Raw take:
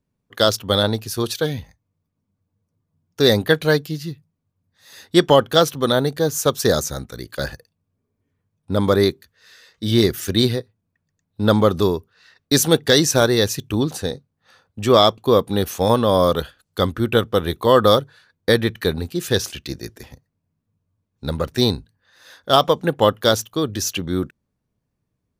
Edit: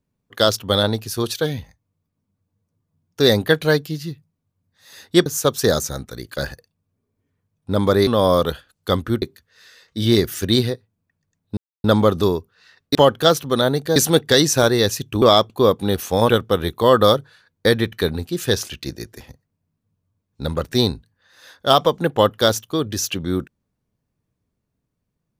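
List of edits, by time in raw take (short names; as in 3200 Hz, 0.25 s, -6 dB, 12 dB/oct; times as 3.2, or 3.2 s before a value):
5.26–6.27 move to 12.54
11.43 insert silence 0.27 s
13.8–14.9 cut
15.97–17.12 move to 9.08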